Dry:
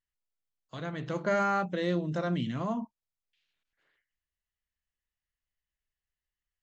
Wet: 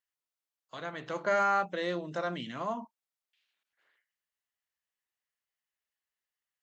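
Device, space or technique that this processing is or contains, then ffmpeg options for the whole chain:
filter by subtraction: -filter_complex "[0:a]asplit=2[link_01][link_02];[link_02]lowpass=860,volume=-1[link_03];[link_01][link_03]amix=inputs=2:normalize=0"

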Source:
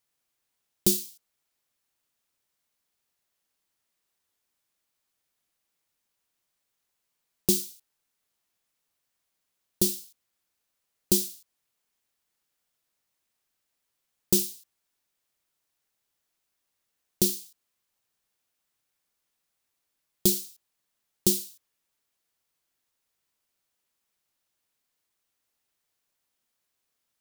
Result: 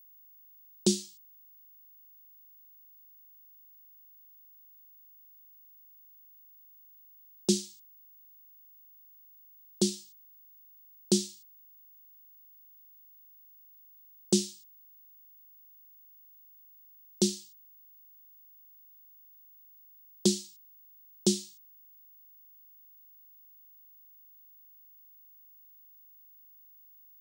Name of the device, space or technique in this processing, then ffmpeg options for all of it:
old television with a line whistle: -af "highpass=frequency=180:width=0.5412,highpass=frequency=180:width=1.3066,equalizer=frequency=200:width_type=q:width=4:gain=4,equalizer=frequency=1200:width_type=q:width=4:gain=-3,equalizer=frequency=2300:width_type=q:width=4:gain=-4,lowpass=frequency=7700:width=0.5412,lowpass=frequency=7700:width=1.3066,aeval=exprs='val(0)+0.002*sin(2*PI*15625*n/s)':channel_layout=same"

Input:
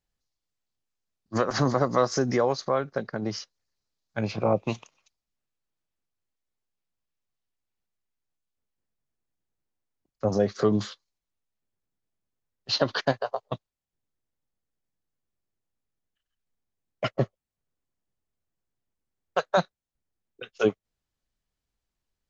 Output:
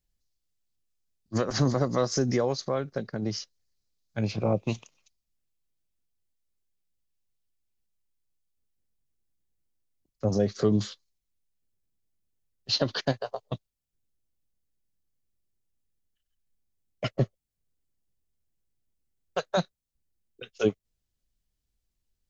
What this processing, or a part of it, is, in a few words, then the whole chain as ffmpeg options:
smiley-face EQ: -af "lowshelf=frequency=81:gain=7.5,equalizer=frequency=1100:width_type=o:width=1.9:gain=-7.5,highshelf=frequency=6100:gain=4"

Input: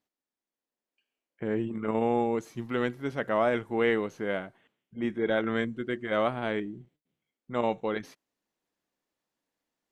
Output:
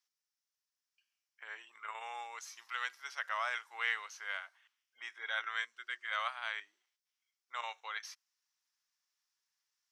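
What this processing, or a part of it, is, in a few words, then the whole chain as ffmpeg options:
headphones lying on a table: -af "highpass=frequency=1100:width=0.5412,highpass=frequency=1100:width=1.3066,equalizer=frequency=5500:width_type=o:width=0.55:gain=12,volume=-2dB"

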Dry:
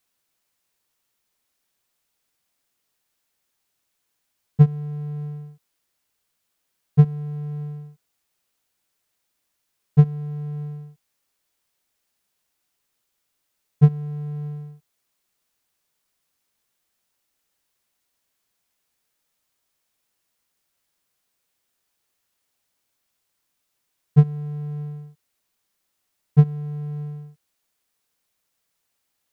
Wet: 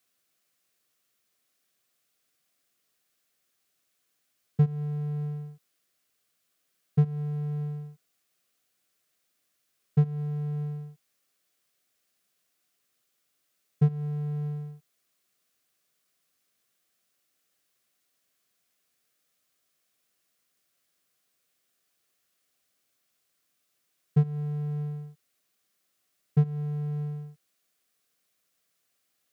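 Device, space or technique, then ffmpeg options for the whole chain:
PA system with an anti-feedback notch: -af "highpass=110,asuperstop=centerf=910:order=4:qfactor=4.3,alimiter=limit=-14.5dB:level=0:latency=1:release=207"

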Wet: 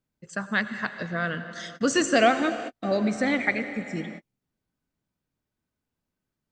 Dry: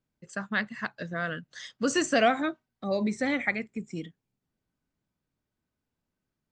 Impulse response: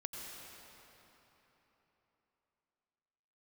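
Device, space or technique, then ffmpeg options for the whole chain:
keyed gated reverb: -filter_complex "[0:a]asplit=3[link_01][link_02][link_03];[1:a]atrim=start_sample=2205[link_04];[link_02][link_04]afir=irnorm=-1:irlink=0[link_05];[link_03]apad=whole_len=287298[link_06];[link_05][link_06]sidechaingate=range=-57dB:threshold=-52dB:ratio=16:detection=peak,volume=-3dB[link_07];[link_01][link_07]amix=inputs=2:normalize=0"

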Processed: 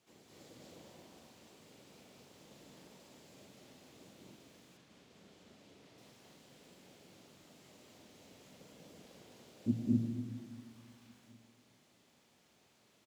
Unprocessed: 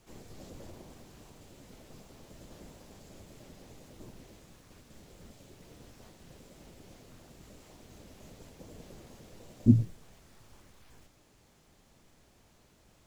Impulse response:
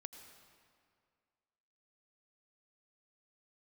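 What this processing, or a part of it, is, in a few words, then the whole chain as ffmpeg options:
stadium PA: -filter_complex "[0:a]highpass=150,equalizer=frequency=3300:width_type=o:width=1.5:gain=5,aecho=1:1:207|250.7:0.891|1[link_01];[1:a]atrim=start_sample=2205[link_02];[link_01][link_02]afir=irnorm=-1:irlink=0,asettb=1/sr,asplit=3[link_03][link_04][link_05];[link_03]atrim=end=4.774[link_06];[link_04]atrim=start=4.77:end=5.98,asetpts=PTS-STARTPTS,afade=type=in:duration=0.004:curve=qsin,afade=type=out:start_time=1.206:duration=0.004:curve=qsin,highshelf=frequency=8700:gain=-11.5[link_07];[link_05]atrim=start=5.976[link_08];[link_06][link_07]acrossfade=duration=0.004:curve1=hsin:curve2=qsin[link_09];[link_09][link_08]acrossfade=duration=0.004:curve1=qsin:curve2=hsin,asplit=2[link_10][link_11];[link_11]adelay=1399,volume=-30dB,highshelf=frequency=4000:gain=-31.5[link_12];[link_10][link_12]amix=inputs=2:normalize=0,volume=-5dB"

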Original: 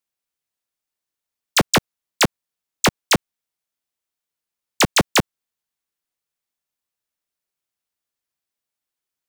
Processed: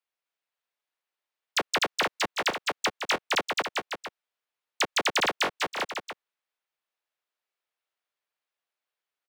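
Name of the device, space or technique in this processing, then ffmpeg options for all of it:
DJ mixer with the lows and highs turned down: -filter_complex "[0:a]acrossover=split=380 3900:gain=0.0794 1 0.2[link_01][link_02][link_03];[link_01][link_02][link_03]amix=inputs=3:normalize=0,aecho=1:1:250|462.5|643.1|796.7|927.2:0.631|0.398|0.251|0.158|0.1,alimiter=limit=-18dB:level=0:latency=1:release=33"

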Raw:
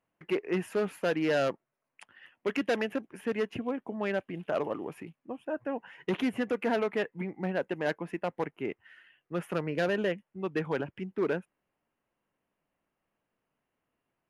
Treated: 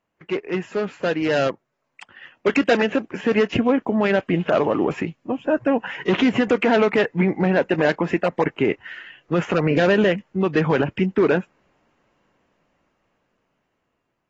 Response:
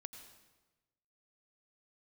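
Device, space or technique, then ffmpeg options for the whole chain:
low-bitrate web radio: -filter_complex "[0:a]asettb=1/sr,asplit=3[link_01][link_02][link_03];[link_01]atrim=end=5.054[link_04];[link_02]atrim=start=5.05:end=5.84,asetpts=PTS-STARTPTS,afade=type=in:duration=0.004:curve=qsin,afade=type=out:start_time=0.786:duration=0.004:curve=qsin,equalizer=frequency=950:width=0.35:gain=-6[link_05];[link_03]atrim=start=5.836[link_06];[link_04][link_05]acrossfade=duration=0.004:curve1=hsin:curve2=qsin[link_07];[link_07][link_06]acrossfade=duration=0.004:curve1=qsin:curve2=hsin,dynaudnorm=framelen=820:gausssize=7:maxgain=14dB,alimiter=limit=-14.5dB:level=0:latency=1:release=70,volume=5dB" -ar 32000 -c:a aac -b:a 24k

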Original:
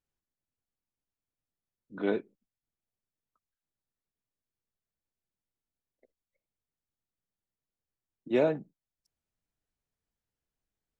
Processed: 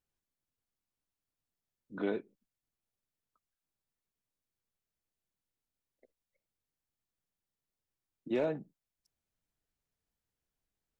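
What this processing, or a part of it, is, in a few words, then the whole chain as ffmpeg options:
clipper into limiter: -af "asoftclip=type=hard:threshold=-17dB,alimiter=limit=-23.5dB:level=0:latency=1:release=258"

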